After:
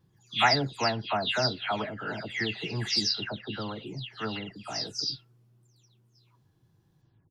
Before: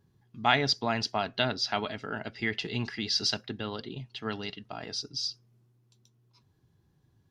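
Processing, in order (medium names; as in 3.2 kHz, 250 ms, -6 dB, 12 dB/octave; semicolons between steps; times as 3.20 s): delay that grows with frequency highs early, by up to 292 ms; trim +2 dB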